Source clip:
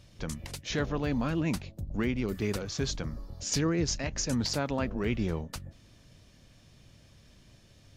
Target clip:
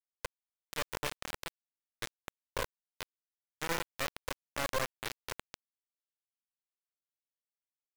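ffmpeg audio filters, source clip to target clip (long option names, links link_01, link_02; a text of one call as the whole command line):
ffmpeg -i in.wav -filter_complex "[0:a]bandreject=frequency=60:width_type=h:width=6,bandreject=frequency=120:width_type=h:width=6,bandreject=frequency=180:width_type=h:width=6,bandreject=frequency=240:width_type=h:width=6,bandreject=frequency=300:width_type=h:width=6,bandreject=frequency=360:width_type=h:width=6,bandreject=frequency=420:width_type=h:width=6,bandreject=frequency=480:width_type=h:width=6,bandreject=frequency=540:width_type=h:width=6,bandreject=frequency=600:width_type=h:width=6,alimiter=level_in=1dB:limit=-24dB:level=0:latency=1:release=10,volume=-1dB,asplit=3[link_01][link_02][link_03];[link_01]bandpass=frequency=530:width_type=q:width=8,volume=0dB[link_04];[link_02]bandpass=frequency=1840:width_type=q:width=8,volume=-6dB[link_05];[link_03]bandpass=frequency=2480:width_type=q:width=8,volume=-9dB[link_06];[link_04][link_05][link_06]amix=inputs=3:normalize=0,highpass=410,equalizer=frequency=830:width_type=q:width=4:gain=-3,equalizer=frequency=1500:width_type=q:width=4:gain=9,equalizer=frequency=3300:width_type=q:width=4:gain=-9,lowpass=frequency=5100:width=0.5412,lowpass=frequency=5100:width=1.3066,asplit=2[link_07][link_08];[link_08]adelay=334,lowpass=frequency=2400:poles=1,volume=-14dB,asplit=2[link_09][link_10];[link_10]adelay=334,lowpass=frequency=2400:poles=1,volume=0.5,asplit=2[link_11][link_12];[link_12]adelay=334,lowpass=frequency=2400:poles=1,volume=0.5,asplit=2[link_13][link_14];[link_14]adelay=334,lowpass=frequency=2400:poles=1,volume=0.5,asplit=2[link_15][link_16];[link_16]adelay=334,lowpass=frequency=2400:poles=1,volume=0.5[link_17];[link_07][link_09][link_11][link_13][link_15][link_17]amix=inputs=6:normalize=0,acrusher=bits=4:dc=4:mix=0:aa=0.000001,volume=13dB" out.wav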